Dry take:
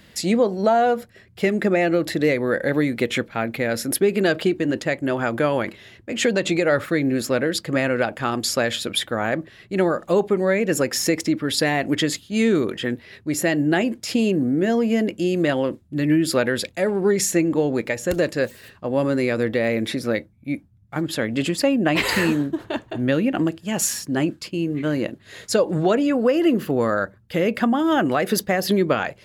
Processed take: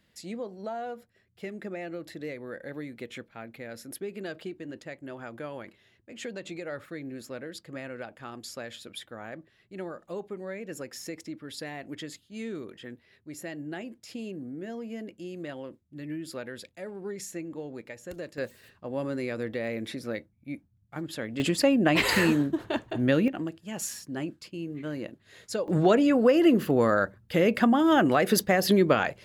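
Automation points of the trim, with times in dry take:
-18 dB
from 18.38 s -11 dB
from 21.40 s -3 dB
from 23.28 s -12 dB
from 25.68 s -2 dB

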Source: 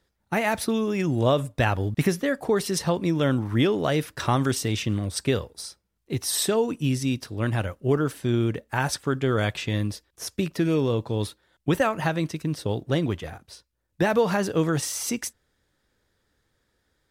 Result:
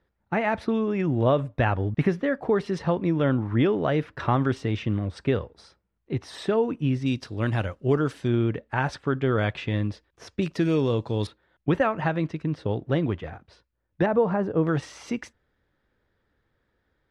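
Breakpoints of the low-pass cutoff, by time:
2.2 kHz
from 7.06 s 5.3 kHz
from 8.28 s 2.8 kHz
from 10.42 s 6.1 kHz
from 11.27 s 2.4 kHz
from 14.06 s 1.1 kHz
from 14.67 s 2.5 kHz

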